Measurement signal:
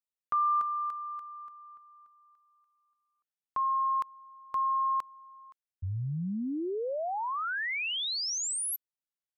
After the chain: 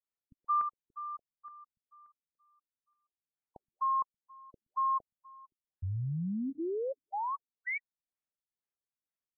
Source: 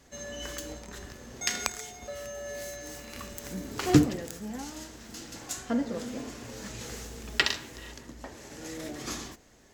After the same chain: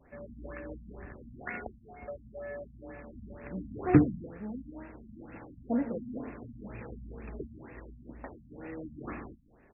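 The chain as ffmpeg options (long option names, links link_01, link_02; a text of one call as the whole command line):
ffmpeg -i in.wav -filter_complex "[0:a]asplit=2[link_01][link_02];[link_02]adelay=122.4,volume=-29dB,highshelf=frequency=4000:gain=-2.76[link_03];[link_01][link_03]amix=inputs=2:normalize=0,afftfilt=real='re*lt(b*sr/1024,250*pow(2800/250,0.5+0.5*sin(2*PI*2.1*pts/sr)))':imag='im*lt(b*sr/1024,250*pow(2800/250,0.5+0.5*sin(2*PI*2.1*pts/sr)))':win_size=1024:overlap=0.75,volume=-1dB" out.wav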